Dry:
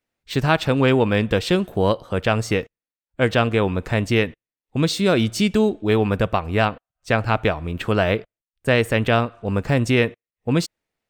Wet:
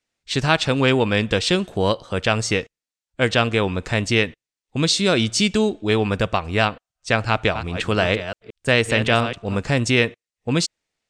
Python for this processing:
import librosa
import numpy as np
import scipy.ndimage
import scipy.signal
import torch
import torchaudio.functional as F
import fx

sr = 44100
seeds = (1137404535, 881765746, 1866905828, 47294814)

y = fx.reverse_delay(x, sr, ms=175, wet_db=-10.0, at=(7.28, 9.59))
y = scipy.signal.sosfilt(scipy.signal.butter(4, 8300.0, 'lowpass', fs=sr, output='sos'), y)
y = fx.high_shelf(y, sr, hz=2800.0, db=11.5)
y = y * librosa.db_to_amplitude(-1.5)